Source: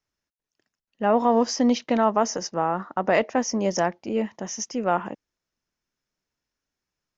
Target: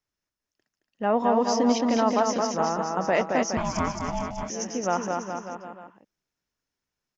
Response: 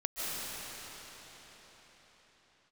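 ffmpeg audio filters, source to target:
-filter_complex "[0:a]aecho=1:1:220|418|596.2|756.6|900.9:0.631|0.398|0.251|0.158|0.1,asettb=1/sr,asplit=3[a][b][c];[a]atrim=end=3.574[d];[b]atrim=start=3.57:end=4.5,asetpts=PTS-STARTPTS,afade=t=in:d=0.004:c=qsin,afade=t=out:st=0.926:d=0.004:c=qsin,aeval=exprs='val(0)*sin(2*PI*420*n/s)':c=same[e];[c]atrim=start=4.496[f];[d][e]acrossfade=d=0.004:c1=hsin:c2=qsin[g];[g][f]acrossfade=d=0.004:c1=qsin:c2=hsin,volume=-3dB"

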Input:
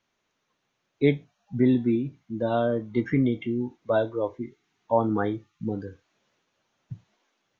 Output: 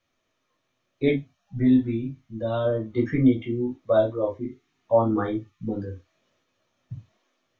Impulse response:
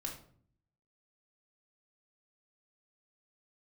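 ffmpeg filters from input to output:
-filter_complex "[0:a]asettb=1/sr,asplit=3[a][b][c];[a]atrim=end=1.154[d];[b]atrim=start=1.15:end=2.65,asetpts=PTS-STARTPTS,afade=t=in:d=0.004:c=qsin,afade=t=out:st=1.496:d=0.004:c=qsin,equalizer=f=390:w=0.76:g=-7[e];[c]atrim=start=2.646[f];[d][e]acrossfade=d=0.004:c1=hsin:c2=qsin[g];[g][f]acrossfade=d=0.004:c1=qsin:c2=hsin[h];[1:a]atrim=start_sample=2205,afade=t=out:st=0.18:d=0.01,atrim=end_sample=8379,asetrate=88200,aresample=44100[i];[h][i]afir=irnorm=-1:irlink=0,volume=7dB"

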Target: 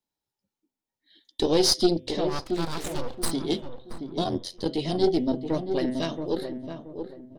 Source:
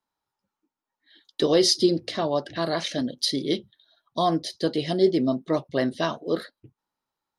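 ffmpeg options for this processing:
-filter_complex "[0:a]equalizer=f=1.2k:t=o:w=1.3:g=-13.5,bandreject=f=128.6:t=h:w=4,bandreject=f=257.2:t=h:w=4,bandreject=f=385.8:t=h:w=4,bandreject=f=514.4:t=h:w=4,bandreject=f=643:t=h:w=4,bandreject=f=771.6:t=h:w=4,bandreject=f=900.2:t=h:w=4,bandreject=f=1.0288k:t=h:w=4,bandreject=f=1.1574k:t=h:w=4,bandreject=f=1.286k:t=h:w=4,bandreject=f=1.4146k:t=h:w=4,bandreject=f=1.5432k:t=h:w=4,bandreject=f=1.6718k:t=h:w=4,bandreject=f=1.8004k:t=h:w=4,bandreject=f=1.929k:t=h:w=4,bandreject=f=2.0576k:t=h:w=4,bandreject=f=2.1862k:t=h:w=4,bandreject=f=2.3148k:t=h:w=4,bandreject=f=2.4434k:t=h:w=4,bandreject=f=2.572k:t=h:w=4,bandreject=f=2.7006k:t=h:w=4,bandreject=f=2.8292k:t=h:w=4,bandreject=f=2.9578k:t=h:w=4,bandreject=f=3.0864k:t=h:w=4,bandreject=f=3.215k:t=h:w=4,bandreject=f=3.3436k:t=h:w=4,bandreject=f=3.4722k:t=h:w=4,bandreject=f=3.6008k:t=h:w=4,asplit=3[a][b][c];[a]afade=t=out:st=4.24:d=0.02[d];[b]aeval=exprs='val(0)*sin(2*PI*44*n/s)':c=same,afade=t=in:st=4.24:d=0.02,afade=t=out:st=4.64:d=0.02[e];[c]afade=t=in:st=4.64:d=0.02[f];[d][e][f]amix=inputs=3:normalize=0,aeval=exprs='0.335*(cos(1*acos(clip(val(0)/0.335,-1,1)))-cos(1*PI/2))+0.0473*(cos(4*acos(clip(val(0)/0.335,-1,1)))-cos(4*PI/2))':c=same,asplit=3[g][h][i];[g]afade=t=out:st=2.27:d=0.02[j];[h]aeval=exprs='abs(val(0))':c=same,afade=t=in:st=2.27:d=0.02,afade=t=out:st=3.3:d=0.02[k];[i]afade=t=in:st=3.3:d=0.02[l];[j][k][l]amix=inputs=3:normalize=0,asplit=2[m][n];[n]adelay=676,lowpass=f=980:p=1,volume=-6.5dB,asplit=2[o][p];[p]adelay=676,lowpass=f=980:p=1,volume=0.33,asplit=2[q][r];[r]adelay=676,lowpass=f=980:p=1,volume=0.33,asplit=2[s][t];[t]adelay=676,lowpass=f=980:p=1,volume=0.33[u];[m][o][q][s][u]amix=inputs=5:normalize=0"

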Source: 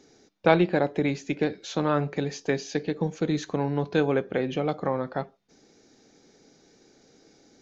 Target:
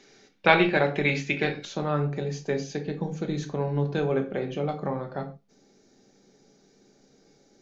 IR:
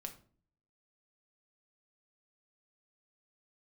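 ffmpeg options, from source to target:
-filter_complex "[0:a]asetnsamples=n=441:p=0,asendcmd='1.65 equalizer g -2.5',equalizer=f=2.4k:t=o:w=2.2:g=12[a];[1:a]atrim=start_sample=2205,atrim=end_sample=6615[b];[a][b]afir=irnorm=-1:irlink=0,volume=1.5dB"

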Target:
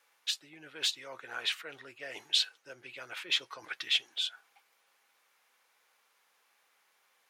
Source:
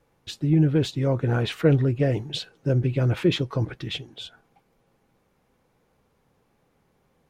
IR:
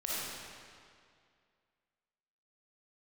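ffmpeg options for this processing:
-af "areverse,acompressor=threshold=-27dB:ratio=16,areverse,highpass=1.5k,volume=6dB"

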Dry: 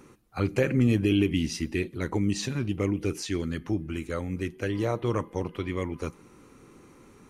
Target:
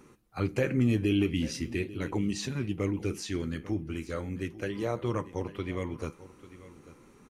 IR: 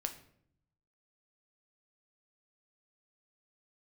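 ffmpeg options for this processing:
-filter_complex "[0:a]flanger=delay=4.7:depth=8.5:regen=-73:speed=0.41:shape=sinusoidal,asplit=2[a][b];[b]aecho=0:1:844:0.141[c];[a][c]amix=inputs=2:normalize=0,volume=1dB"

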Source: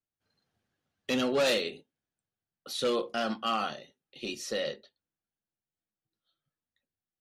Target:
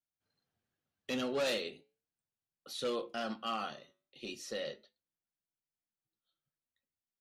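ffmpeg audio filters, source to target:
-af "flanger=delay=5.9:depth=3.9:regen=-86:speed=0.38:shape=triangular,volume=-2.5dB"

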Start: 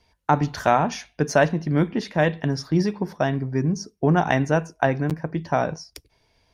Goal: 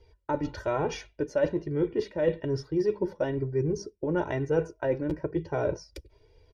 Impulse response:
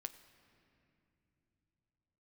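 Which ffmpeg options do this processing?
-af "aemphasis=mode=reproduction:type=50kf,flanger=delay=2.4:depth=1.2:regen=-21:speed=1.1:shape=triangular,lowshelf=f=670:t=q:w=1.5:g=6.5,areverse,acompressor=threshold=-25dB:ratio=6,areverse,aecho=1:1:2.1:0.72"

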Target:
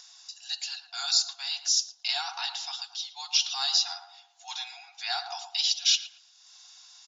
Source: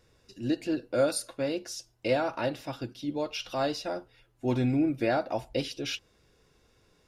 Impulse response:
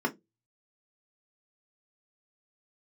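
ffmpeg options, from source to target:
-filter_complex "[0:a]afftfilt=real='re*between(b*sr/4096,690,7300)':imag='im*between(b*sr/4096,690,7300)':win_size=4096:overlap=0.75,adynamicequalizer=threshold=0.00316:dfrequency=3600:dqfactor=0.81:tfrequency=3600:tqfactor=0.81:attack=5:release=100:ratio=0.375:range=2.5:mode=boostabove:tftype=bell,acompressor=mode=upward:threshold=-51dB:ratio=2.5,aexciter=amount=7:drive=4.2:freq=3.3k,asplit=2[a][b];[b]adelay=113,lowpass=f=1k:p=1,volume=-6dB,asplit=2[c][d];[d]adelay=113,lowpass=f=1k:p=1,volume=0.53,asplit=2[e][f];[f]adelay=113,lowpass=f=1k:p=1,volume=0.53,asplit=2[g][h];[h]adelay=113,lowpass=f=1k:p=1,volume=0.53,asplit=2[i][j];[j]adelay=113,lowpass=f=1k:p=1,volume=0.53,asplit=2[k][l];[l]adelay=113,lowpass=f=1k:p=1,volume=0.53,asplit=2[m][n];[n]adelay=113,lowpass=f=1k:p=1,volume=0.53[o];[a][c][e][g][i][k][m][o]amix=inputs=8:normalize=0,volume=-3.5dB"

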